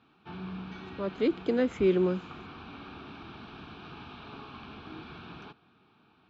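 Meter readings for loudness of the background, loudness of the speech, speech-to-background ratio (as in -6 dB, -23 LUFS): -45.0 LUFS, -28.5 LUFS, 16.5 dB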